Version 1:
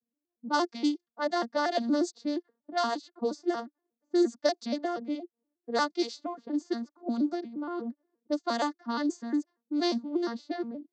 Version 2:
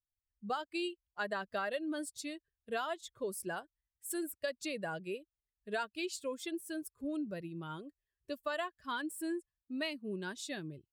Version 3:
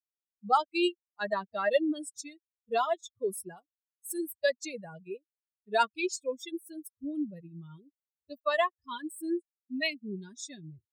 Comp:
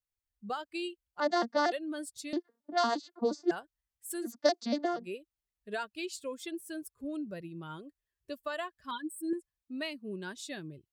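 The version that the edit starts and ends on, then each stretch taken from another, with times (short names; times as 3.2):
2
1.2–1.72 from 1
2.33–3.51 from 1
4.29–5 from 1, crossfade 0.16 s
8.91–9.33 from 3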